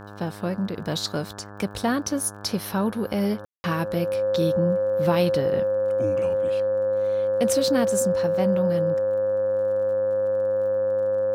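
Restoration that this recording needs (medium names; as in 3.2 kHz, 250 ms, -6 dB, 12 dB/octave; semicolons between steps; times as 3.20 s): de-click; de-hum 102.2 Hz, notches 17; band-stop 530 Hz, Q 30; room tone fill 3.45–3.64 s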